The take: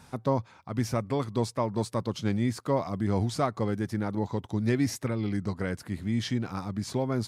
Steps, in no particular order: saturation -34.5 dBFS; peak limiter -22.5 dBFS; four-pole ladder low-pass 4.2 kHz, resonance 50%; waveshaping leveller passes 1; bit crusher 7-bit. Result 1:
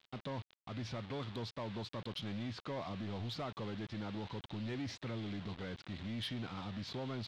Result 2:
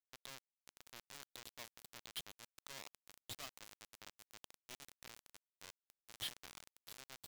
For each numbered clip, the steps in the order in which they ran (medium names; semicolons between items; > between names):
waveshaping leveller > peak limiter > bit crusher > four-pole ladder low-pass > saturation; waveshaping leveller > peak limiter > saturation > four-pole ladder low-pass > bit crusher